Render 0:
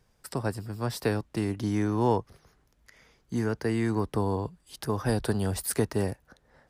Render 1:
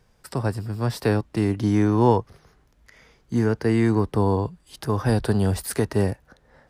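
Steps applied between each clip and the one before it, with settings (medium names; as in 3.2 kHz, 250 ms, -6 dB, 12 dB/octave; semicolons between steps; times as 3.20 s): treble shelf 6.1 kHz -5 dB; harmonic-percussive split harmonic +5 dB; trim +3 dB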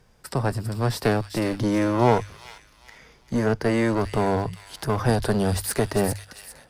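one-sided clip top -25.5 dBFS; hum notches 50/100 Hz; feedback echo behind a high-pass 398 ms, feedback 34%, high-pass 2.8 kHz, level -5 dB; trim +3 dB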